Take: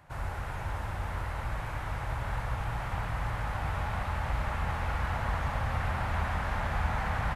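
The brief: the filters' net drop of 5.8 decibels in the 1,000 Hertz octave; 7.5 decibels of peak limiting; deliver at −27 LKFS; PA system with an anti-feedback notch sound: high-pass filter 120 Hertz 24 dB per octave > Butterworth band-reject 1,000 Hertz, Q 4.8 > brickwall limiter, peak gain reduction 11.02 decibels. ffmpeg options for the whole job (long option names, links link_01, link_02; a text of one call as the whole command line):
ffmpeg -i in.wav -af "equalizer=frequency=1000:width_type=o:gain=-6,alimiter=level_in=2dB:limit=-24dB:level=0:latency=1,volume=-2dB,highpass=frequency=120:width=0.5412,highpass=frequency=120:width=1.3066,asuperstop=centerf=1000:order=8:qfactor=4.8,volume=19.5dB,alimiter=limit=-19dB:level=0:latency=1" out.wav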